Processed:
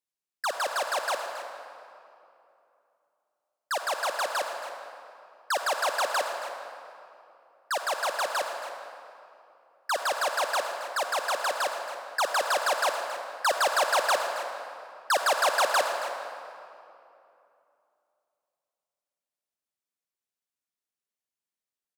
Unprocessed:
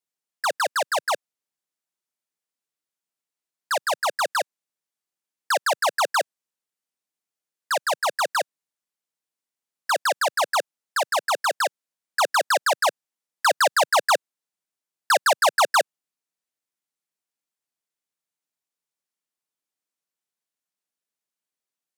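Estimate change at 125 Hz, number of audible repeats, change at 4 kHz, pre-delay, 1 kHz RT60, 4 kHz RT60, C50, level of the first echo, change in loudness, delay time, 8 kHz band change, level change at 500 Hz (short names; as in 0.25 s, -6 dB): n/a, 1, -4.0 dB, 40 ms, 2.7 s, 1.8 s, 4.5 dB, -12.5 dB, -5.0 dB, 0.274 s, -4.5 dB, -4.0 dB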